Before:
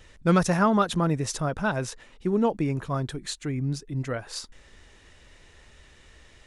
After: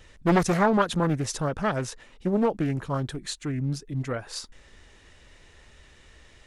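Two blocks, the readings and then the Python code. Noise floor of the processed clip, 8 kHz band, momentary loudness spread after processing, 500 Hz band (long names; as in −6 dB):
−55 dBFS, −0.5 dB, 11 LU, +0.5 dB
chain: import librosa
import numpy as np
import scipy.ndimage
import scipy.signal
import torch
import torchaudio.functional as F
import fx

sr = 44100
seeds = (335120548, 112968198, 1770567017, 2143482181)

y = fx.doppler_dist(x, sr, depth_ms=0.64)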